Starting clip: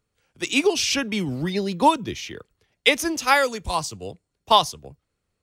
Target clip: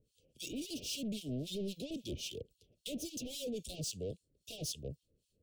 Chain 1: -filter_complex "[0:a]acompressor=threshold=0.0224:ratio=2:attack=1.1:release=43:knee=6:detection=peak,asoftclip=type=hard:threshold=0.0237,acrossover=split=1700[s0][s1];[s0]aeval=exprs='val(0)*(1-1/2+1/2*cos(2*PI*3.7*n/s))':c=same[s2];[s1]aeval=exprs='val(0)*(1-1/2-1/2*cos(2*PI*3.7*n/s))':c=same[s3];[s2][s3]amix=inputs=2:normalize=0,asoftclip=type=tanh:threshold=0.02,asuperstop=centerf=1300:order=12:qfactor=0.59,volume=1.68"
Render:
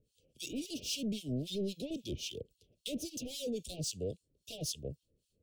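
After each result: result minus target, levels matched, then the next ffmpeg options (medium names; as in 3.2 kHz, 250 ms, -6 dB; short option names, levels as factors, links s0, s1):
saturation: distortion -7 dB; compression: peak gain reduction +3.5 dB
-filter_complex "[0:a]acompressor=threshold=0.0224:ratio=2:attack=1.1:release=43:knee=6:detection=peak,asoftclip=type=hard:threshold=0.0237,acrossover=split=1700[s0][s1];[s0]aeval=exprs='val(0)*(1-1/2+1/2*cos(2*PI*3.7*n/s))':c=same[s2];[s1]aeval=exprs='val(0)*(1-1/2-1/2*cos(2*PI*3.7*n/s))':c=same[s3];[s2][s3]amix=inputs=2:normalize=0,asoftclip=type=tanh:threshold=0.01,asuperstop=centerf=1300:order=12:qfactor=0.59,volume=1.68"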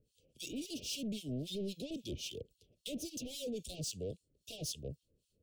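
compression: peak gain reduction +3.5 dB
-filter_complex "[0:a]acompressor=threshold=0.0531:ratio=2:attack=1.1:release=43:knee=6:detection=peak,asoftclip=type=hard:threshold=0.0237,acrossover=split=1700[s0][s1];[s0]aeval=exprs='val(0)*(1-1/2+1/2*cos(2*PI*3.7*n/s))':c=same[s2];[s1]aeval=exprs='val(0)*(1-1/2-1/2*cos(2*PI*3.7*n/s))':c=same[s3];[s2][s3]amix=inputs=2:normalize=0,asoftclip=type=tanh:threshold=0.01,asuperstop=centerf=1300:order=12:qfactor=0.59,volume=1.68"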